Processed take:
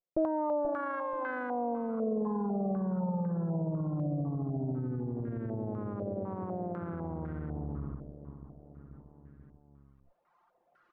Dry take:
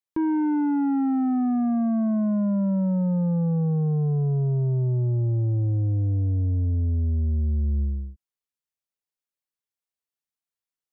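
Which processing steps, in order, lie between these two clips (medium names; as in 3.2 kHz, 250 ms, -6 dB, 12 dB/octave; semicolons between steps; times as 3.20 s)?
comb filter that takes the minimum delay 5.7 ms; feedback delay 484 ms, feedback 33%, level -9 dB; reverse; upward compressor, threshold -36 dBFS; reverse; reverb removal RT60 1.5 s; peak limiter -27.5 dBFS, peak gain reduction 10 dB; step-sequenced low-pass 4 Hz 600–1600 Hz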